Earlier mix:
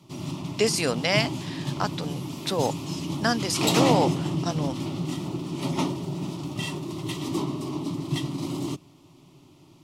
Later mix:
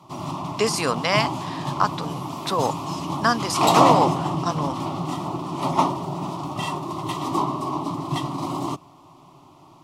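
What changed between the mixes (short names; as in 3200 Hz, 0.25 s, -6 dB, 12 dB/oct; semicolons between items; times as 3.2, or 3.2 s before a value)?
background: add bell 730 Hz +11 dB 0.67 oct; master: add bell 1100 Hz +13.5 dB 0.57 oct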